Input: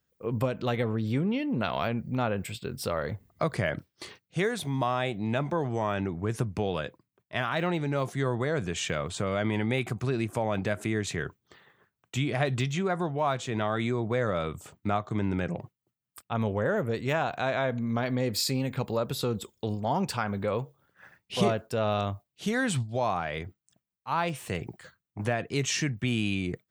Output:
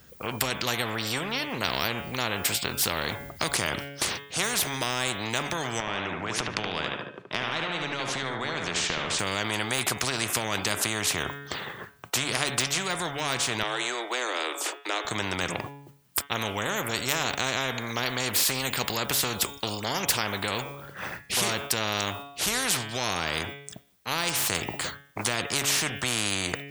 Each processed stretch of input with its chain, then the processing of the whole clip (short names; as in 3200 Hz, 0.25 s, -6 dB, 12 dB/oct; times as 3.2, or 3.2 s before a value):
5.8–9.19 BPF 160–4300 Hz + compressor 4:1, threshold -34 dBFS + dark delay 74 ms, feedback 34%, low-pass 3200 Hz, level -5.5 dB
13.63–15.05 steep high-pass 310 Hz 96 dB/oct + high shelf 9300 Hz -11.5 dB
whole clip: de-hum 141.2 Hz, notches 26; spectral compressor 4:1; gain +9 dB